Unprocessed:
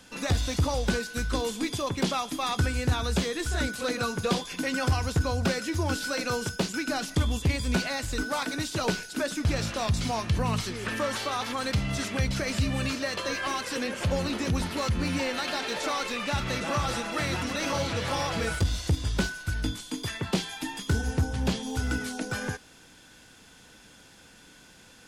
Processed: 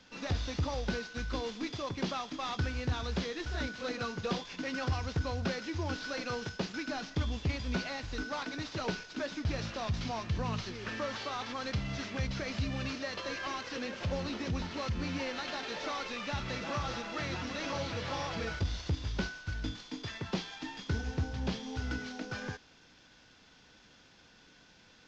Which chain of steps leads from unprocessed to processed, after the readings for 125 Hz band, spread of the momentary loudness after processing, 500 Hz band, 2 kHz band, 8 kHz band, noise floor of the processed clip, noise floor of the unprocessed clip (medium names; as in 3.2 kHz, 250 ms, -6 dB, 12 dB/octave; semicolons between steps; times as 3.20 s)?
-7.5 dB, 4 LU, -7.5 dB, -7.0 dB, -13.0 dB, -61 dBFS, -54 dBFS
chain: CVSD coder 32 kbps; trim -7 dB